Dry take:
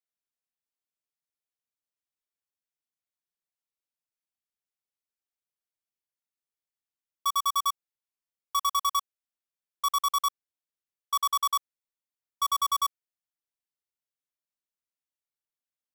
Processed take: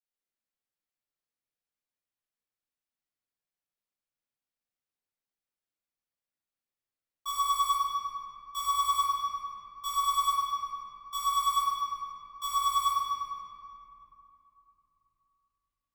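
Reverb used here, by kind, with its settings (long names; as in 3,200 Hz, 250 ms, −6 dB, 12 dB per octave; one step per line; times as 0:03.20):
rectangular room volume 150 cubic metres, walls hard, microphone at 2.4 metres
level −14.5 dB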